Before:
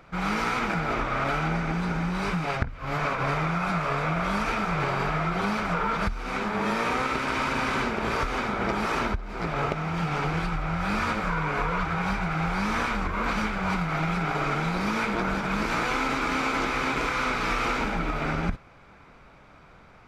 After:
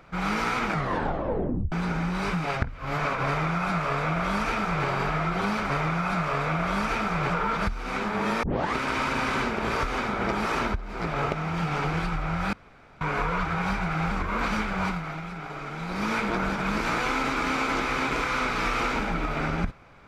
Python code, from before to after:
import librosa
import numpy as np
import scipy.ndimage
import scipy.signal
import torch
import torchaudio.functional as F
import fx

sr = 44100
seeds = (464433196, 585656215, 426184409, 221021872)

y = fx.edit(x, sr, fx.tape_stop(start_s=0.7, length_s=1.02),
    fx.duplicate(start_s=3.27, length_s=1.6, to_s=5.7),
    fx.tape_start(start_s=6.83, length_s=0.32),
    fx.room_tone_fill(start_s=10.93, length_s=0.48),
    fx.cut(start_s=12.51, length_s=0.45),
    fx.fade_down_up(start_s=13.68, length_s=1.25, db=-9.5, fade_s=0.47, curve='qua'), tone=tone)